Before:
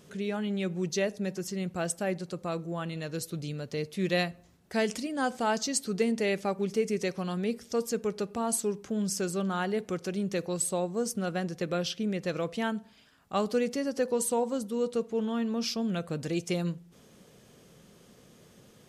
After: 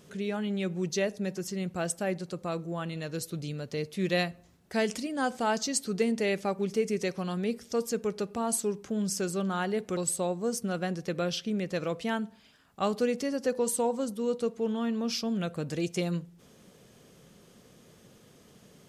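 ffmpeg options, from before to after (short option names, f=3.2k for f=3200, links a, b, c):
-filter_complex "[0:a]asplit=2[a][b];[a]atrim=end=9.972[c];[b]atrim=start=10.498[d];[c][d]acrossfade=d=0.004:c1=hsin:c2=hsin"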